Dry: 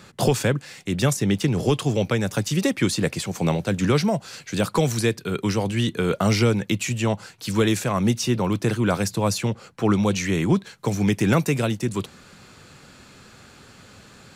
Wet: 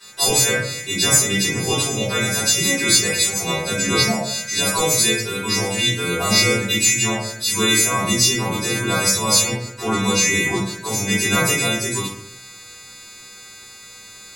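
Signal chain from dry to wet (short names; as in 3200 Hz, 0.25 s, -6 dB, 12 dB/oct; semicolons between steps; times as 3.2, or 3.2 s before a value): frequency quantiser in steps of 2 st; low shelf 420 Hz -11.5 dB; notch 3100 Hz, Q 8.9; sample leveller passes 1; shoebox room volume 85 m³, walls mixed, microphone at 3.7 m; gain -11 dB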